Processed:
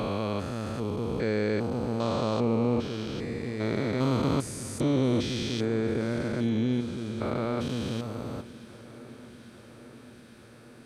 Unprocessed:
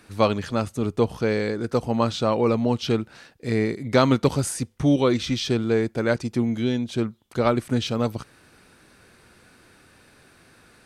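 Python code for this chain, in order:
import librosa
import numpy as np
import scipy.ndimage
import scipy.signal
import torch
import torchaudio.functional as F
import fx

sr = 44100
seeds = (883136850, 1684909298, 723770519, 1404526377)

y = fx.spec_steps(x, sr, hold_ms=400)
y = fx.echo_swing(y, sr, ms=844, ratio=3, feedback_pct=71, wet_db=-20.5)
y = y * librosa.db_to_amplitude(-2.0)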